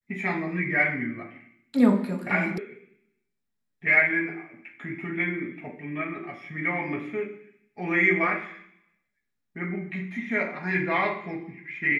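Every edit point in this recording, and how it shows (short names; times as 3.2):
2.58 sound cut off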